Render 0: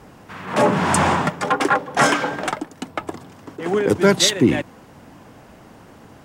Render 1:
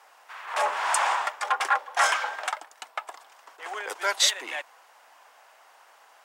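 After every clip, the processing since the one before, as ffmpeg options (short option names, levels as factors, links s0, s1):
-af "highpass=f=730:w=0.5412,highpass=f=730:w=1.3066,volume=0.596"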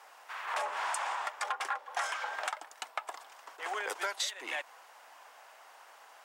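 -af "acompressor=threshold=0.0282:ratio=16"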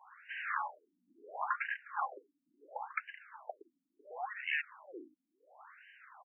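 -filter_complex "[0:a]acrossover=split=870[s0][s1];[s0]adelay=520[s2];[s2][s1]amix=inputs=2:normalize=0,afftfilt=real='re*between(b*sr/1024,210*pow(2200/210,0.5+0.5*sin(2*PI*0.72*pts/sr))/1.41,210*pow(2200/210,0.5+0.5*sin(2*PI*0.72*pts/sr))*1.41)':imag='im*between(b*sr/1024,210*pow(2200/210,0.5+0.5*sin(2*PI*0.72*pts/sr))/1.41,210*pow(2200/210,0.5+0.5*sin(2*PI*0.72*pts/sr))*1.41)':win_size=1024:overlap=0.75,volume=1.58"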